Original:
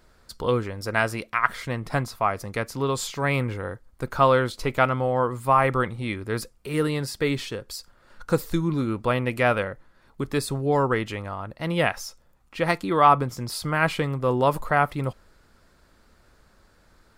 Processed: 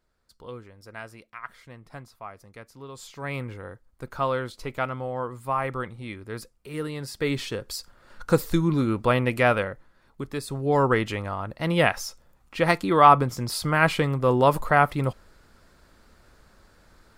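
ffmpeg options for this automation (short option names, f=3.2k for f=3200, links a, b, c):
-af "volume=11dB,afade=t=in:st=2.91:d=0.45:silence=0.354813,afade=t=in:st=6.95:d=0.68:silence=0.334965,afade=t=out:st=9.22:d=1.2:silence=0.354813,afade=t=in:st=10.42:d=0.46:silence=0.354813"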